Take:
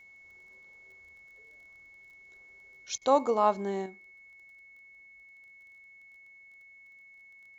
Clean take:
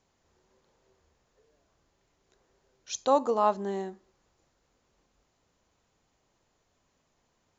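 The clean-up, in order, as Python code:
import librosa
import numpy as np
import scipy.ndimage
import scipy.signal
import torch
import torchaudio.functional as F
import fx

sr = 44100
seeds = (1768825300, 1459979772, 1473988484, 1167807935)

y = fx.fix_declick_ar(x, sr, threshold=6.5)
y = fx.notch(y, sr, hz=2200.0, q=30.0)
y = fx.fix_interpolate(y, sr, at_s=(2.98,), length_ms=34.0)
y = fx.fix_level(y, sr, at_s=3.86, step_db=6.5)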